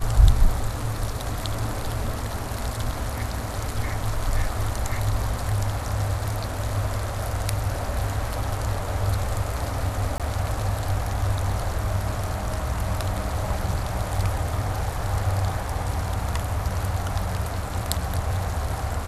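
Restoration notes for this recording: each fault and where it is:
0:10.18–0:10.20: drop-out 17 ms

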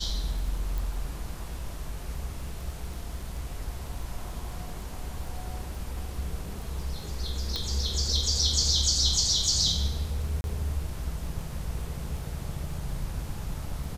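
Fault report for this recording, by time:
surface crackle 10 per second −37 dBFS
0:00.78: click
0:07.56: click −16 dBFS
0:10.41–0:10.44: drop-out 31 ms

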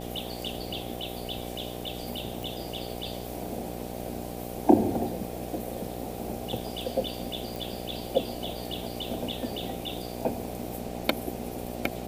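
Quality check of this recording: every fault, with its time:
mains buzz 60 Hz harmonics 13 −38 dBFS
0:02.43: click
0:07.56: click

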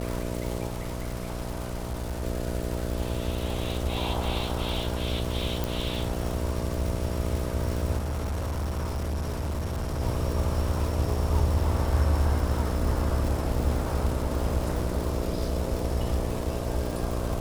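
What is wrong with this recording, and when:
mains buzz 60 Hz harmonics 11 −32 dBFS
surface crackle 260 per second −31 dBFS
0:00.68–0:02.24: clipping −27.5 dBFS
0:05.64: click
0:07.97–0:10.01: clipping −26.5 dBFS

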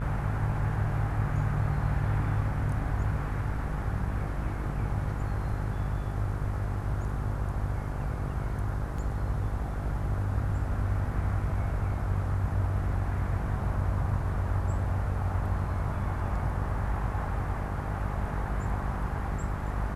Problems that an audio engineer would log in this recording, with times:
mains buzz 50 Hz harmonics 29 −34 dBFS
0:08.98: drop-out 3.8 ms

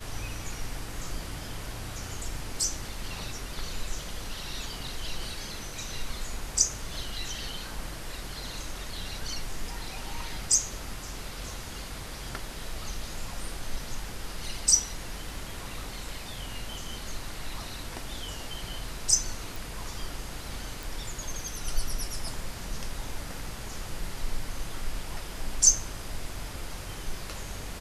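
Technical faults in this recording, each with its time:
0:19.56: click
0:20.83: click

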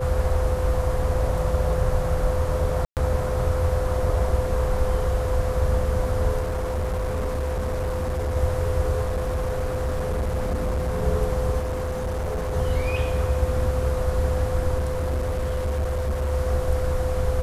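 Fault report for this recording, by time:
whistle 510 Hz −27 dBFS
0:02.85–0:02.97: drop-out 118 ms
0:06.40–0:08.37: clipping −22 dBFS
0:09.01–0:11.04: clipping −21 dBFS
0:11.60–0:12.55: clipping −23.5 dBFS
0:14.78–0:16.32: clipping −21 dBFS

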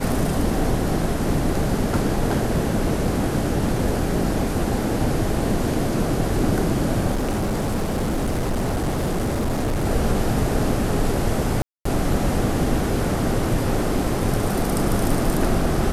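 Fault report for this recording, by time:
0:07.11–0:09.86: clipping −19 dBFS
0:11.62–0:11.85: drop-out 234 ms

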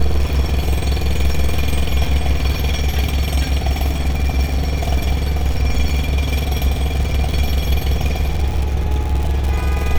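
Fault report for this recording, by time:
surface crackle 64 per second −20 dBFS

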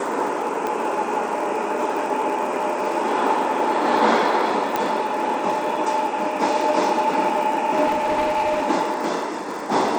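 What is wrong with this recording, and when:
surface crackle 90 per second −29 dBFS
0:00.67: click −13 dBFS
0:04.76: click
0:07.86–0:08.68: clipping −17 dBFS

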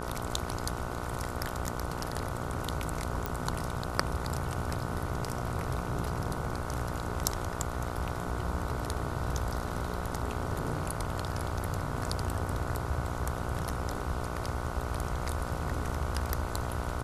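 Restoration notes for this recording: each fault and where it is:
mains buzz 60 Hz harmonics 25 −38 dBFS
0:03.26: click −16 dBFS

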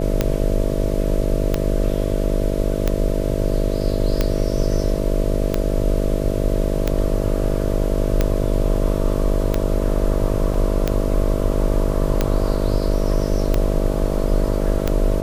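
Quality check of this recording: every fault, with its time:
mains buzz 50 Hz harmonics 13 −23 dBFS
scratch tick 45 rpm −5 dBFS
0:10.54: drop-out 3.4 ms

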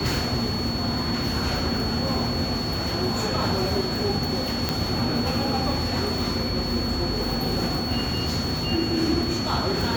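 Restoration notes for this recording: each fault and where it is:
whistle 4,400 Hz −30 dBFS
0:04.69: click −8 dBFS

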